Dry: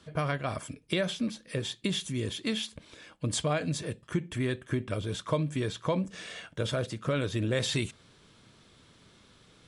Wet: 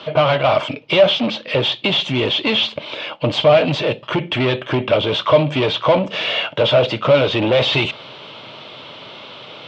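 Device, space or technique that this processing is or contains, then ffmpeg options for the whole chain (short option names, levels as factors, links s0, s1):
overdrive pedal into a guitar cabinet: -filter_complex "[0:a]asplit=2[s0][s1];[s1]highpass=f=720:p=1,volume=22.4,asoftclip=type=tanh:threshold=0.2[s2];[s0][s2]amix=inputs=2:normalize=0,lowpass=f=7500:p=1,volume=0.501,highpass=92,equalizer=f=130:t=q:w=4:g=6,equalizer=f=190:t=q:w=4:g=-3,equalizer=f=600:t=q:w=4:g=9,equalizer=f=880:t=q:w=4:g=5,equalizer=f=1700:t=q:w=4:g=-9,equalizer=f=2900:t=q:w=4:g=6,lowpass=f=3800:w=0.5412,lowpass=f=3800:w=1.3066,volume=1.68"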